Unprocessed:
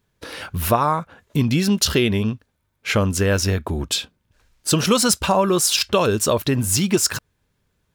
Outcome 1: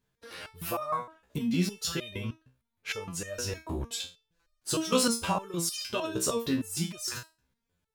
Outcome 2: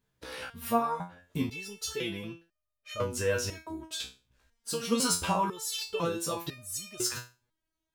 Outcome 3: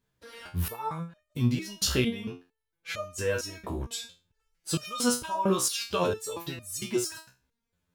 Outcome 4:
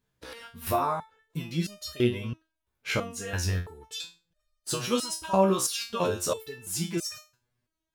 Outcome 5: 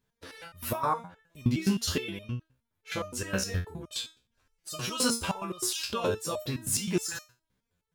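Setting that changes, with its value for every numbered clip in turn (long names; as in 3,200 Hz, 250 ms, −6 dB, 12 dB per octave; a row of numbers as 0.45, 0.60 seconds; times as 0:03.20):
step-sequenced resonator, speed: 6.5, 2, 4.4, 3, 9.6 Hertz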